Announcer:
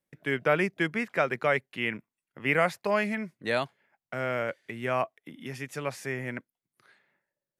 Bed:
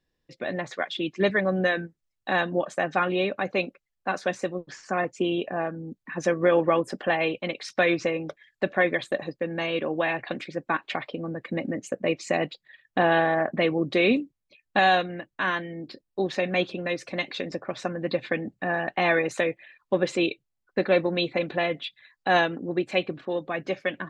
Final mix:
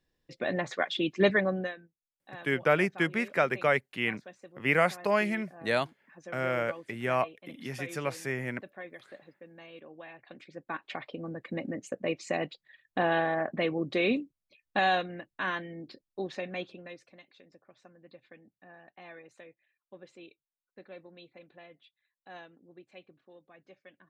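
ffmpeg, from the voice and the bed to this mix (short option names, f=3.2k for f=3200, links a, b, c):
-filter_complex "[0:a]adelay=2200,volume=0dB[a];[1:a]volume=15dB,afade=t=out:st=1.31:d=0.45:silence=0.0891251,afade=t=in:st=10.21:d=1.04:silence=0.16788,afade=t=out:st=15.78:d=1.42:silence=0.0944061[b];[a][b]amix=inputs=2:normalize=0"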